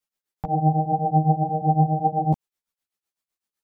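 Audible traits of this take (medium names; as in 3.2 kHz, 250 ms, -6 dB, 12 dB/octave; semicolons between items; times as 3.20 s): tremolo triangle 7.9 Hz, depth 95%; a shimmering, thickened sound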